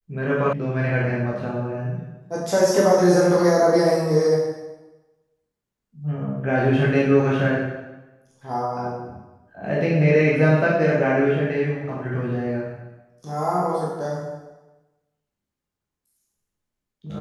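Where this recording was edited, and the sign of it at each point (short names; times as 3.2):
0.53 sound cut off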